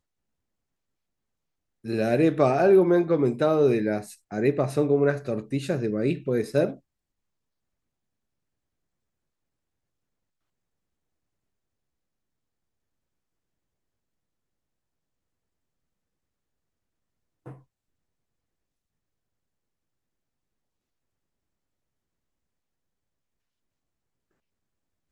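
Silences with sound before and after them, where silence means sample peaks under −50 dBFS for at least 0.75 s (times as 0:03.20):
0:06.79–0:17.46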